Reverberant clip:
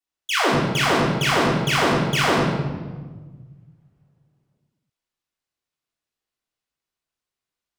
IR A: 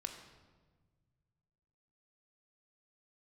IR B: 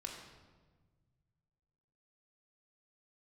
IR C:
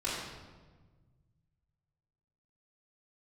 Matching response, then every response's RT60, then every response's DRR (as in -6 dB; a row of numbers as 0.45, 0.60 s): C; 1.4, 1.4, 1.4 s; 4.0, -0.5, -10.0 dB